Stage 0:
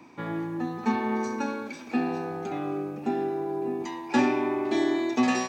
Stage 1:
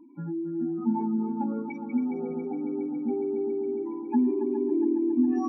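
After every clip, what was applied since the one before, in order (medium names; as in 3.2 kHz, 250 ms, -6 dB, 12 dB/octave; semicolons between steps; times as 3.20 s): spectral contrast enhancement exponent 4; multi-head delay 138 ms, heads second and third, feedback 71%, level -11 dB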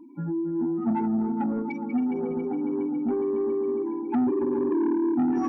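saturation -24 dBFS, distortion -13 dB; trim +4.5 dB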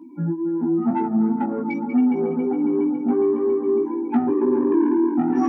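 high-pass 130 Hz 24 dB/octave; chorus 2 Hz, delay 15.5 ms, depth 2.1 ms; trim +8.5 dB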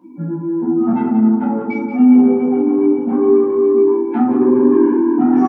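on a send: delay 179 ms -9 dB; on the sum: simulated room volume 490 m³, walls furnished, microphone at 5.4 m; trim -3.5 dB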